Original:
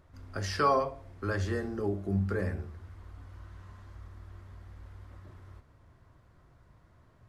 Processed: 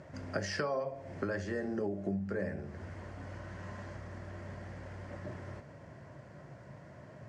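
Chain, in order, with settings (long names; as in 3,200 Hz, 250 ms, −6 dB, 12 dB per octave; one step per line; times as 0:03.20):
downward compressor 16 to 1, threshold −43 dBFS, peak gain reduction 22.5 dB
loudspeaker in its box 140–8,000 Hz, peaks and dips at 140 Hz +7 dB, 200 Hz +4 dB, 590 Hz +9 dB, 1,200 Hz −7 dB, 1,800 Hz +4 dB, 3,700 Hz −8 dB
level +10.5 dB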